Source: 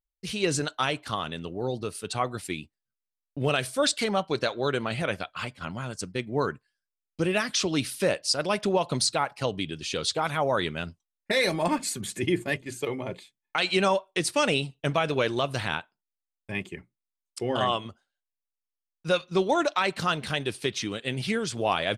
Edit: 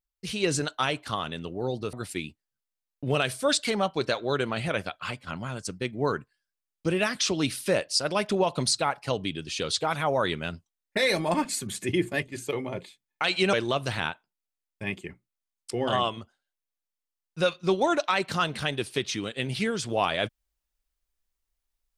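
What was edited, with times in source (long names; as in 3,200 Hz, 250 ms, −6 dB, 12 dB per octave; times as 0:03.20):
0:01.93–0:02.27: remove
0:13.87–0:15.21: remove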